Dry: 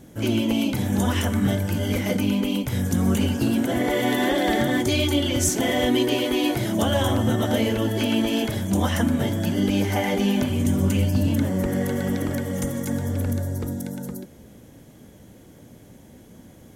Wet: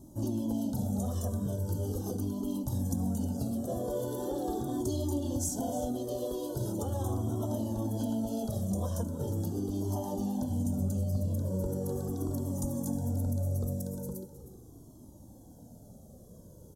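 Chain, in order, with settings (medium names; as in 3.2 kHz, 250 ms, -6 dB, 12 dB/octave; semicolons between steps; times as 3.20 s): compression, threshold -24 dBFS, peak gain reduction 8 dB; Butterworth band-stop 2.2 kHz, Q 0.5; on a send: delay 313 ms -13.5 dB; on the sum: Shepard-style flanger falling 0.4 Hz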